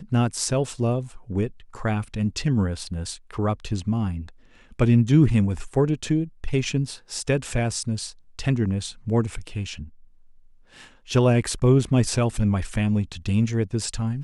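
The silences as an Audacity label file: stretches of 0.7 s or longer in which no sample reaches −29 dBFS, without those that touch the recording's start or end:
9.820000	11.100000	silence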